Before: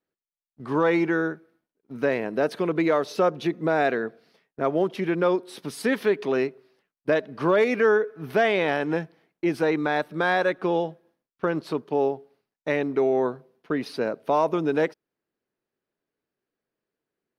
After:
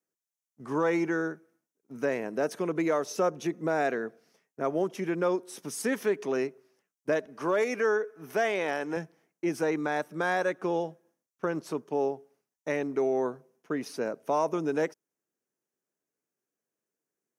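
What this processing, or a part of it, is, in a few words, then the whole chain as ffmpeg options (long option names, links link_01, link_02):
budget condenser microphone: -filter_complex "[0:a]highpass=120,highshelf=frequency=5100:width_type=q:width=3:gain=6.5,asettb=1/sr,asplit=3[link_01][link_02][link_03];[link_01]atrim=end=7.264[link_04];[link_02]atrim=start=7.26:end=8.97,asetpts=PTS-STARTPTS,afade=type=in:duration=0.004:curve=qsin,afade=type=out:start_time=1.706:duration=0.004:curve=qsin,highpass=frequency=290:poles=1[link_05];[link_03]atrim=start=8.966[link_06];[link_04][link_05]acrossfade=duration=0.004:curve1=hsin:curve2=qsin[link_07];[link_07][link_06]acrossfade=duration=0.004:curve1=qsin:curve2=hsin,volume=-5dB"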